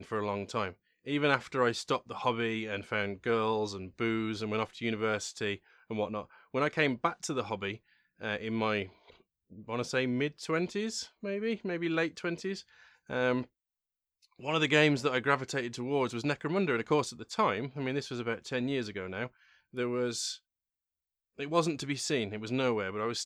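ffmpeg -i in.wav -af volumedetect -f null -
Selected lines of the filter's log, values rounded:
mean_volume: -33.1 dB
max_volume: -10.6 dB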